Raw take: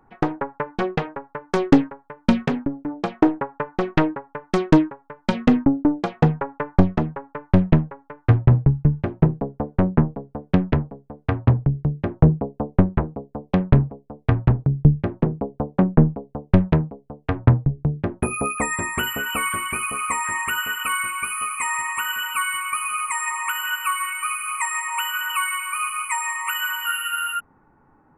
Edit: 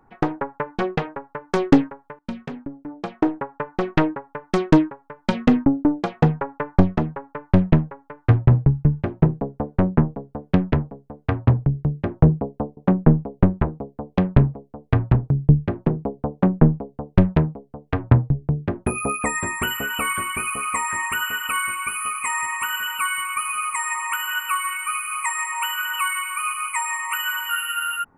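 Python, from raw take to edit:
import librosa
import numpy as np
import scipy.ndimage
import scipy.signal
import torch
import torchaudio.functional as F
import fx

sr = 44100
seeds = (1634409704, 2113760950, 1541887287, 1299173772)

y = fx.edit(x, sr, fx.fade_in_from(start_s=2.19, length_s=1.71, floor_db=-16.5),
    fx.duplicate(start_s=15.68, length_s=0.64, to_s=12.77), tone=tone)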